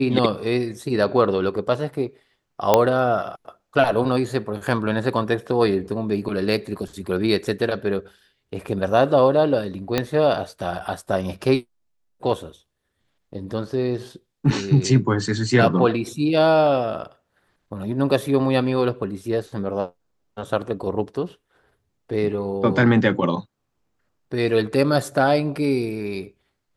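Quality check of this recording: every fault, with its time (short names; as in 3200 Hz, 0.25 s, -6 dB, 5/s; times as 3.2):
2.74 pop -1 dBFS
9.98 pop -6 dBFS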